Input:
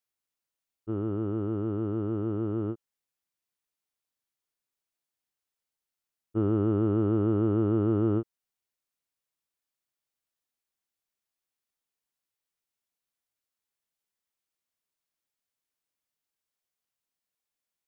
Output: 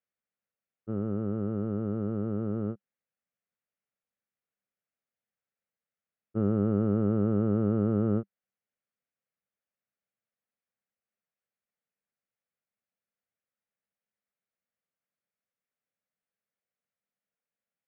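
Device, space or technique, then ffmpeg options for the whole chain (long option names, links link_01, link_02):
bass cabinet: -af "highpass=85,equalizer=frequency=200:width_type=q:width=4:gain=7,equalizer=frequency=330:width_type=q:width=4:gain=-9,equalizer=frequency=530:width_type=q:width=4:gain=5,equalizer=frequency=970:width_type=q:width=4:gain=-9,lowpass=frequency=2300:width=0.5412,lowpass=frequency=2300:width=1.3066"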